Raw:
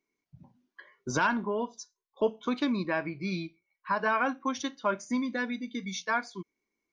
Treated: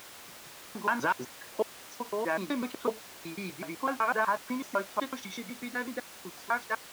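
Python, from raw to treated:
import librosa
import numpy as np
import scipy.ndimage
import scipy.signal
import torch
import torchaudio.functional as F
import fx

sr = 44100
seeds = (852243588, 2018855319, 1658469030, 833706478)

y = fx.block_reorder(x, sr, ms=125.0, group=6)
y = fx.lowpass(y, sr, hz=1100.0, slope=6)
y = fx.dmg_noise_colour(y, sr, seeds[0], colour='pink', level_db=-50.0)
y = fx.highpass(y, sr, hz=750.0, slope=6)
y = y * librosa.db_to_amplitude(5.0)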